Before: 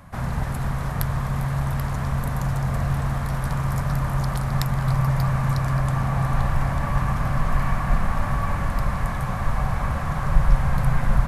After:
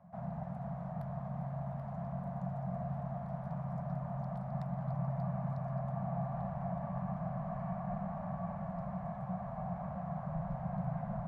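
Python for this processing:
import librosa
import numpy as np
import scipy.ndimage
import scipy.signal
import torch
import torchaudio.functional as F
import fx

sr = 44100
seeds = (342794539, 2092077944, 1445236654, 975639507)

y = fx.double_bandpass(x, sr, hz=350.0, octaves=1.9)
y = F.gain(torch.from_numpy(y), -3.0).numpy()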